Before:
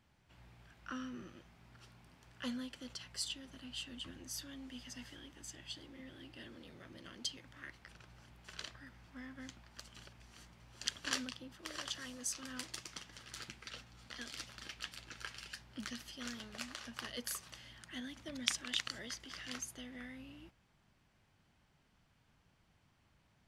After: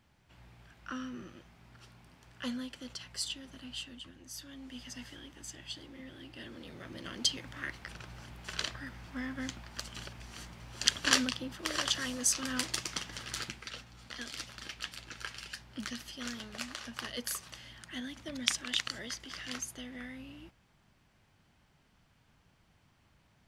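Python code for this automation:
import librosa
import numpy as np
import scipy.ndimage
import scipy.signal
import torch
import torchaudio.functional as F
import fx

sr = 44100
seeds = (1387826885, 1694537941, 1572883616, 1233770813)

y = fx.gain(x, sr, db=fx.line((3.75, 3.5), (4.13, -3.5), (4.82, 4.0), (6.25, 4.0), (7.29, 11.0), (13.29, 11.0), (13.73, 4.5)))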